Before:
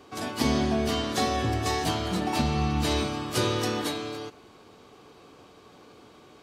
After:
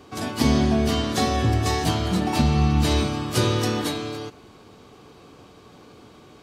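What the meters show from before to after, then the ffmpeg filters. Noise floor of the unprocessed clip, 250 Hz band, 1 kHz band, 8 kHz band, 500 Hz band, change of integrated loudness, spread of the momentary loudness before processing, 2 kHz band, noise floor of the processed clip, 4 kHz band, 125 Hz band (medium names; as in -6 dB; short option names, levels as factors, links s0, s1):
-53 dBFS, +5.5 dB, +2.5 dB, +3.5 dB, +3.0 dB, +5.0 dB, 8 LU, +2.5 dB, -49 dBFS, +3.0 dB, +8.0 dB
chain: -af "bass=f=250:g=6,treble=f=4000:g=1,volume=1.33"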